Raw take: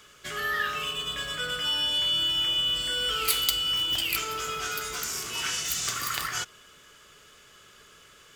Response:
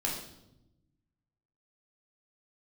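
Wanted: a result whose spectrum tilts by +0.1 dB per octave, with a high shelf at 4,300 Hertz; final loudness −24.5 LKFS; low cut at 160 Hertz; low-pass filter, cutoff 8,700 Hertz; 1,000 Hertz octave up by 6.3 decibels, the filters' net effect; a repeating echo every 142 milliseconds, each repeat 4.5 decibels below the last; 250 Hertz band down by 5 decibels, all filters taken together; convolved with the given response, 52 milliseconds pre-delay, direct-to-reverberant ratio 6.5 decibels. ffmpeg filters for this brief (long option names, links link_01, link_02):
-filter_complex "[0:a]highpass=160,lowpass=8700,equalizer=frequency=250:width_type=o:gain=-7,equalizer=frequency=1000:width_type=o:gain=8.5,highshelf=frequency=4300:gain=8,aecho=1:1:142|284|426|568|710|852|994|1136|1278:0.596|0.357|0.214|0.129|0.0772|0.0463|0.0278|0.0167|0.01,asplit=2[link_01][link_02];[1:a]atrim=start_sample=2205,adelay=52[link_03];[link_02][link_03]afir=irnorm=-1:irlink=0,volume=-11.5dB[link_04];[link_01][link_04]amix=inputs=2:normalize=0,volume=-4dB"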